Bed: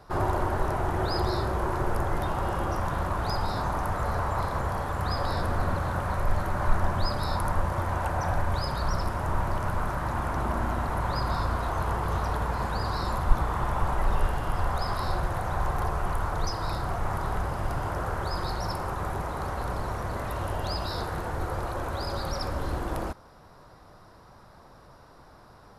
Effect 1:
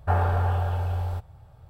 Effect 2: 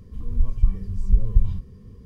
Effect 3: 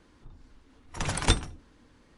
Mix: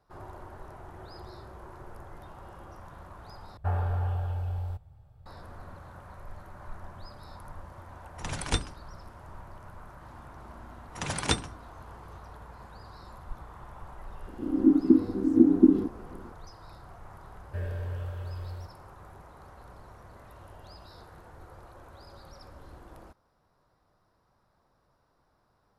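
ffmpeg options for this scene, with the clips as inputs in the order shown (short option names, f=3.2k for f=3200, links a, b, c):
-filter_complex "[1:a]asplit=2[a][b];[3:a]asplit=2[c][d];[0:a]volume=-18.5dB[e];[a]lowshelf=f=180:g=7[f];[d]highpass=96[g];[2:a]aeval=exprs='val(0)*sin(2*PI*290*n/s)':c=same[h];[b]asuperstop=centerf=980:order=20:qfactor=1.1[i];[e]asplit=2[j][k];[j]atrim=end=3.574[l];[f]atrim=end=1.69,asetpts=PTS-STARTPTS,volume=-10.5dB[m];[k]atrim=start=5.256[n];[c]atrim=end=2.17,asetpts=PTS-STARTPTS,volume=-5dB,afade=t=in:d=0.004:c=hsin,afade=t=out:st=2.166:d=0.004:c=hsin,adelay=7240[o];[g]atrim=end=2.17,asetpts=PTS-STARTPTS,volume=-1.5dB,afade=t=in:d=0.004:c=hsin,afade=t=out:st=2.166:d=0.004:c=hsin,adelay=10010[p];[h]atrim=end=2.05,asetpts=PTS-STARTPTS,volume=-0.5dB,afade=t=in:d=0.004:c=hsin,afade=t=out:st=2.046:d=0.004:c=hsin,adelay=14270[q];[i]atrim=end=1.69,asetpts=PTS-STARTPTS,volume=-10.5dB,afade=t=in:d=0.004:c=hsin,afade=t=out:st=1.686:d=0.004:c=hsin,adelay=17460[r];[l][m]acrossfade=d=0.004:c1=hsin:c2=hsin[s];[s][n]acrossfade=d=0.004:c1=hsin:c2=hsin[t];[t][o][p][q][r]amix=inputs=5:normalize=0"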